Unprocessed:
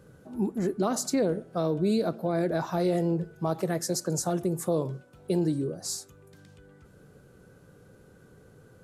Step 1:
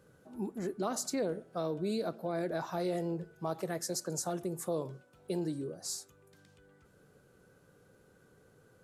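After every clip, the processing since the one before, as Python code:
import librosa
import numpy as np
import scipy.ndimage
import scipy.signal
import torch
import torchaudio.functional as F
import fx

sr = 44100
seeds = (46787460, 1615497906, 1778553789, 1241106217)

y = fx.low_shelf(x, sr, hz=310.0, db=-7.0)
y = y * librosa.db_to_amplitude(-5.0)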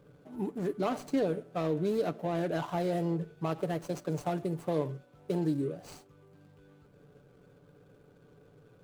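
y = scipy.signal.medfilt(x, 25)
y = y + 0.39 * np.pad(y, (int(6.9 * sr / 1000.0), 0))[:len(y)]
y = y * librosa.db_to_amplitude(4.5)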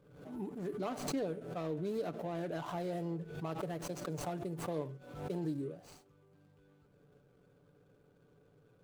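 y = fx.pre_swell(x, sr, db_per_s=68.0)
y = y * librosa.db_to_amplitude(-7.5)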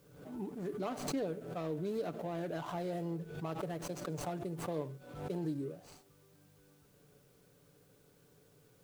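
y = fx.quant_dither(x, sr, seeds[0], bits=12, dither='triangular')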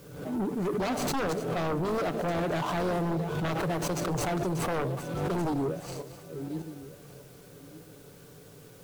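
y = fx.reverse_delay_fb(x, sr, ms=602, feedback_pct=41, wet_db=-12.0)
y = fx.fold_sine(y, sr, drive_db=11, ceiling_db=-24.5)
y = y * librosa.db_to_amplitude(-1.0)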